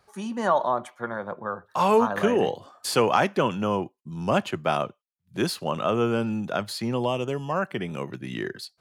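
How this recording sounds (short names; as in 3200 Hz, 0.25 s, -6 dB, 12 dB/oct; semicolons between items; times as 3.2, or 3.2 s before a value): noise floor -76 dBFS; spectral tilt -4.5 dB/oct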